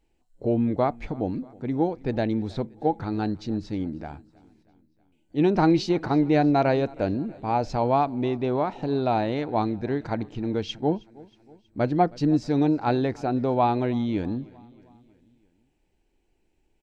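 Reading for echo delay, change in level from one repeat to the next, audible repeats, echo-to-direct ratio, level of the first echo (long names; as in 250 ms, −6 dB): 318 ms, −5.0 dB, 3, −22.0 dB, −23.5 dB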